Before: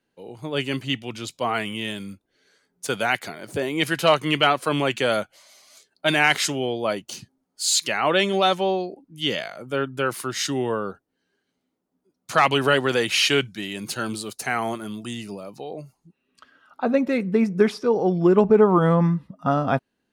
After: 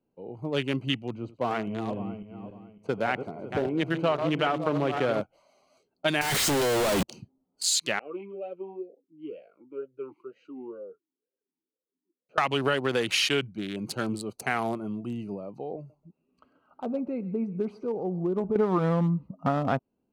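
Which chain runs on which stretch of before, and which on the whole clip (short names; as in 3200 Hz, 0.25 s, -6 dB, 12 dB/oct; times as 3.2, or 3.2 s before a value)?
1.12–5.21 regenerating reverse delay 0.277 s, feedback 49%, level -7.5 dB + LPF 1500 Hz 6 dB/oct + echo 85 ms -18.5 dB
6.21–7.03 infinite clipping + bell 8500 Hz +3 dB 0.24 oct
7.99–12.38 flange 1.2 Hz, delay 3.2 ms, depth 3.8 ms, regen -39% + vowel sweep e-u 2.1 Hz
15.76–18.56 compressor 1.5:1, threshold -42 dBFS + thinning echo 0.134 s, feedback 43%, high-pass 870 Hz, level -15 dB
whole clip: Wiener smoothing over 25 samples; compressor 4:1, threshold -22 dBFS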